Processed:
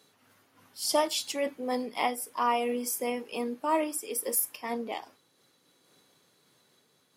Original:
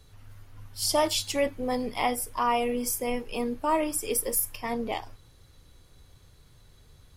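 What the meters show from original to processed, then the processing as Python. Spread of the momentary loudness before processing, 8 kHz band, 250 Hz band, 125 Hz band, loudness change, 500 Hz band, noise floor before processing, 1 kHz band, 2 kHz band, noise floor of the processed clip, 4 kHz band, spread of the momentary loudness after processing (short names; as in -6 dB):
7 LU, -3.0 dB, -3.0 dB, under -15 dB, -2.5 dB, -2.5 dB, -57 dBFS, -1.5 dB, -2.5 dB, -68 dBFS, -3.0 dB, 8 LU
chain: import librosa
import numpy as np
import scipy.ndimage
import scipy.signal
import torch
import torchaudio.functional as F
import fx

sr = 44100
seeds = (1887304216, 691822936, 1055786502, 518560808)

y = scipy.signal.sosfilt(scipy.signal.butter(4, 200.0, 'highpass', fs=sr, output='sos'), x)
y = fx.am_noise(y, sr, seeds[0], hz=5.7, depth_pct=55)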